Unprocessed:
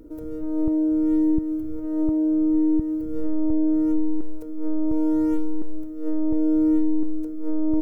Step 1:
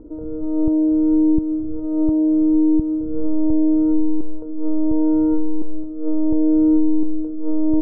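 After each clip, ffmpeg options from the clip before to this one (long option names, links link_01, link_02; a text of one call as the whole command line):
ffmpeg -i in.wav -af "lowpass=frequency=1100:width=0.5412,lowpass=frequency=1100:width=1.3066,volume=4.5dB" out.wav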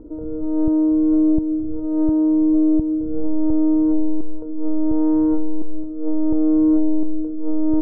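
ffmpeg -i in.wav -af "acontrast=56,volume=-5.5dB" out.wav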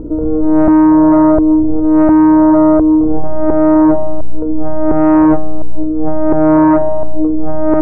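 ffmpeg -i in.wav -af "aeval=exprs='0.355*sin(PI/2*2*val(0)/0.355)':channel_layout=same,aeval=exprs='val(0)+0.0178*(sin(2*PI*60*n/s)+sin(2*PI*2*60*n/s)/2+sin(2*PI*3*60*n/s)/3+sin(2*PI*4*60*n/s)/4+sin(2*PI*5*60*n/s)/5)':channel_layout=same,volume=4dB" out.wav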